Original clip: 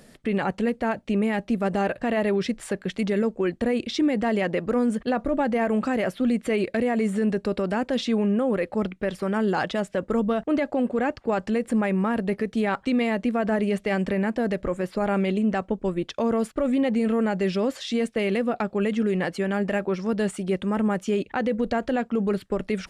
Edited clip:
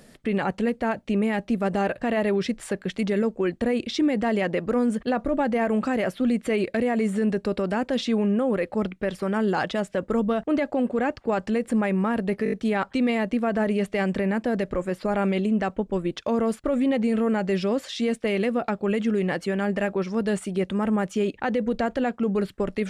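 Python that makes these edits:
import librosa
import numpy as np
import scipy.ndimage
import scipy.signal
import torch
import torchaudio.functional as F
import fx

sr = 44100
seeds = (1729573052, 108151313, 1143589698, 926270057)

y = fx.edit(x, sr, fx.stutter(start_s=12.44, slice_s=0.02, count=5), tone=tone)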